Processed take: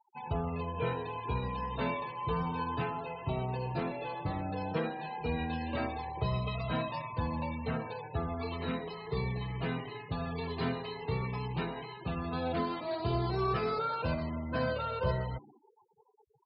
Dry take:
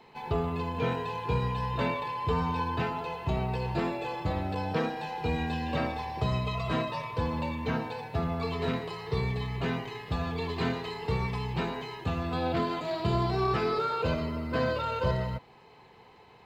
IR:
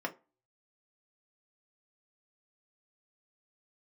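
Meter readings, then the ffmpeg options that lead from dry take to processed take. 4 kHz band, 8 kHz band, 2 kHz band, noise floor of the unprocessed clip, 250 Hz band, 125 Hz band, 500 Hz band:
-5.5 dB, no reading, -4.5 dB, -55 dBFS, -4.0 dB, -4.0 dB, -4.0 dB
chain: -filter_complex "[0:a]asplit=5[s0][s1][s2][s3][s4];[s1]adelay=118,afreqshift=84,volume=0.0794[s5];[s2]adelay=236,afreqshift=168,volume=0.0447[s6];[s3]adelay=354,afreqshift=252,volume=0.0248[s7];[s4]adelay=472,afreqshift=336,volume=0.014[s8];[s0][s5][s6][s7][s8]amix=inputs=5:normalize=0,afftfilt=real='re*gte(hypot(re,im),0.01)':imag='im*gte(hypot(re,im),0.01)':win_size=1024:overlap=0.75,flanger=delay=1.1:depth=6.5:regen=-48:speed=0.14:shape=sinusoidal"

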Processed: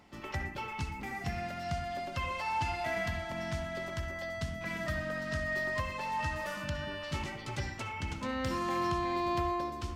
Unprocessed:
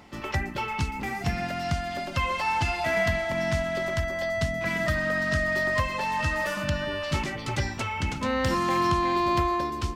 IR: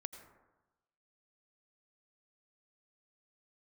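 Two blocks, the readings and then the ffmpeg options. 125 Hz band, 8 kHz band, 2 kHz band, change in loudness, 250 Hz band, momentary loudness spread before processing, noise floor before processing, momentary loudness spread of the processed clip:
-8.5 dB, -9.0 dB, -9.0 dB, -8.5 dB, -8.0 dB, 6 LU, -36 dBFS, 6 LU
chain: -filter_complex "[1:a]atrim=start_sample=2205,afade=t=out:st=0.23:d=0.01,atrim=end_sample=10584,asetrate=61740,aresample=44100[s0];[0:a][s0]afir=irnorm=-1:irlink=0,volume=0.794"

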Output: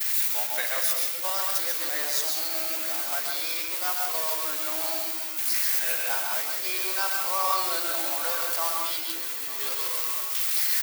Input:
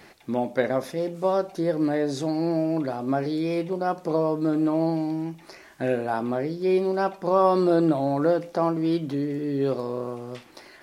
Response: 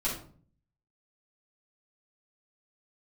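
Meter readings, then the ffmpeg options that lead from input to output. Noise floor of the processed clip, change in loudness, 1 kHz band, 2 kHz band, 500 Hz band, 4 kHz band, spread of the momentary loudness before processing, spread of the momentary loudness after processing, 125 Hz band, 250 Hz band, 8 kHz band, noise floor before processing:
-32 dBFS, +0.5 dB, -3.5 dB, +6.0 dB, -14.5 dB, +13.0 dB, 9 LU, 4 LU, under -35 dB, -24.0 dB, no reading, -51 dBFS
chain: -filter_complex "[0:a]aeval=exprs='val(0)+0.5*0.0266*sgn(val(0))':c=same,aemphasis=mode=production:type=riaa,agate=range=0.0224:threshold=0.0891:ratio=3:detection=peak,highpass=1400,acontrast=64,alimiter=limit=0.178:level=0:latency=1:release=56,aecho=1:1:897:0.168,asplit=2[s0][s1];[1:a]atrim=start_sample=2205,adelay=127[s2];[s1][s2]afir=irnorm=-1:irlink=0,volume=0.398[s3];[s0][s3]amix=inputs=2:normalize=0"

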